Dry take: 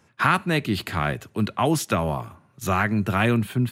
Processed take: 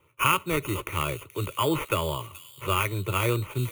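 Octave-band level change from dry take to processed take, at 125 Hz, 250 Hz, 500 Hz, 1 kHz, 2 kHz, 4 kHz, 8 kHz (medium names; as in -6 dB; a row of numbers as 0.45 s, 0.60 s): -4.5 dB, -8.5 dB, -2.5 dB, -3.5 dB, -4.5 dB, +0.5 dB, -0.5 dB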